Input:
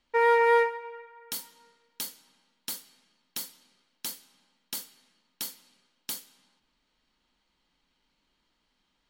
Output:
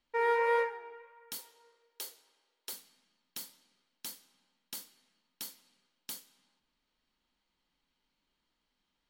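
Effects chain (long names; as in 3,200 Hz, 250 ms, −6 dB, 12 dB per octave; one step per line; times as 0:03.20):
flanger 1.6 Hz, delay 8.2 ms, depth 6.8 ms, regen −85%
0:01.38–0:02.73: low shelf with overshoot 290 Hz −11.5 dB, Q 3
level −2.5 dB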